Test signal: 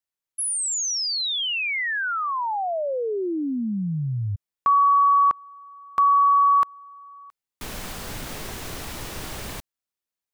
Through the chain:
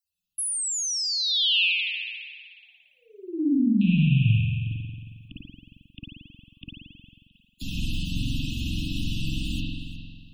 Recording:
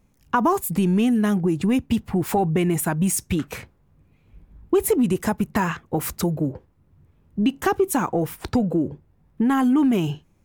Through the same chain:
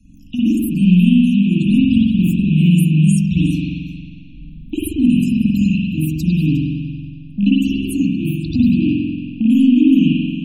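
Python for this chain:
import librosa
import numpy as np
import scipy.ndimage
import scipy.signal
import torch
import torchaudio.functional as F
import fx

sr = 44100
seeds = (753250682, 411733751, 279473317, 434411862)

p1 = fx.rattle_buzz(x, sr, strikes_db=-25.0, level_db=-26.0)
p2 = scipy.signal.sosfilt(scipy.signal.ellip(5, 1.0, 80, [300.0, 2600.0], 'bandstop', fs=sr, output='sos'), p1)
p3 = fx.spec_topn(p2, sr, count=64)
p4 = p3 + fx.echo_single(p3, sr, ms=359, db=-19.0, dry=0)
p5 = fx.rev_spring(p4, sr, rt60_s=1.3, pass_ms=(45,), chirp_ms=60, drr_db=-9.0)
y = fx.band_squash(p5, sr, depth_pct=40)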